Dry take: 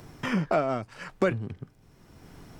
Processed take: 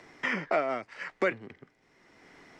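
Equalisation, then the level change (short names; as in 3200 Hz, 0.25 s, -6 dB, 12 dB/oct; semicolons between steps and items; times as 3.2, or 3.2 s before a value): three-band isolator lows -19 dB, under 250 Hz, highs -23 dB, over 7700 Hz; bell 2000 Hz +12 dB 0.39 oct; -2.5 dB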